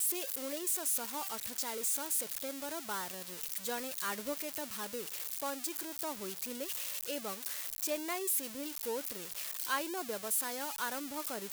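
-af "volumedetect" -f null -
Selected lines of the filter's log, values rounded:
mean_volume: -38.0 dB
max_volume: -21.9 dB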